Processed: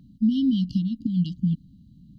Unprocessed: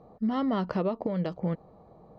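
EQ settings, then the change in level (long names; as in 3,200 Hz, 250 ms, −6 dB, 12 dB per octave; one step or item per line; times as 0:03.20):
linear-phase brick-wall band-stop 300–2,800 Hz
+7.5 dB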